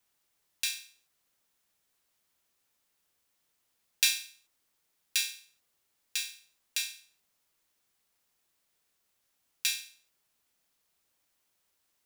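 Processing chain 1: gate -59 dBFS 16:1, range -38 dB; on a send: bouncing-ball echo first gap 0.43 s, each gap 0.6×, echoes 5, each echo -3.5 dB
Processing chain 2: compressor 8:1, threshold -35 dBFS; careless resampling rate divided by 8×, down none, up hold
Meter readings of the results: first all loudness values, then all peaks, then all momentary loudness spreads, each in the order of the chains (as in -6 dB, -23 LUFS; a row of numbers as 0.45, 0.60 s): -32.5, -43.0 LUFS; -3.0, -17.5 dBFS; 13, 14 LU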